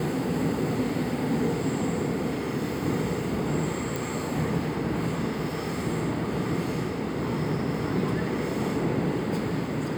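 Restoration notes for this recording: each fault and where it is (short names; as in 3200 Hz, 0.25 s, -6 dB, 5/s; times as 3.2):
3.96 pop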